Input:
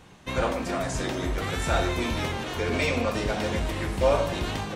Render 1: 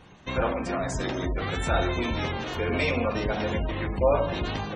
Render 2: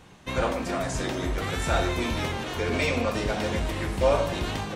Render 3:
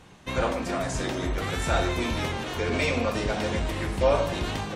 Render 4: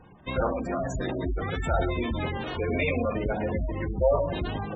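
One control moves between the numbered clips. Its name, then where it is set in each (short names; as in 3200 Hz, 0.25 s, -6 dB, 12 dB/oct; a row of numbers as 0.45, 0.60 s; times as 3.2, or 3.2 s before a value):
spectral gate, under each frame's peak: -25, -60, -45, -15 dB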